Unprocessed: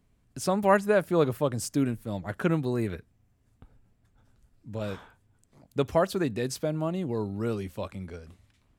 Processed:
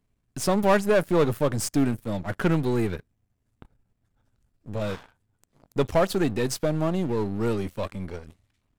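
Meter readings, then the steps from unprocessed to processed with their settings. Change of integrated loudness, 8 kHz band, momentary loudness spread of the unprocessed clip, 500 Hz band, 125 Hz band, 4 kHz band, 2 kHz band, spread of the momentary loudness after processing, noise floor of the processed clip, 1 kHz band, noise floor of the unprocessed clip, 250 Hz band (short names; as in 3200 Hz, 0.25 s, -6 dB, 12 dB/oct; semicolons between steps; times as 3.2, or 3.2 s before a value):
+3.0 dB, +4.5 dB, 16 LU, +2.5 dB, +3.5 dB, +5.0 dB, +2.5 dB, 14 LU, -75 dBFS, +1.5 dB, -68 dBFS, +3.5 dB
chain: half-wave gain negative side -7 dB; sample leveller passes 2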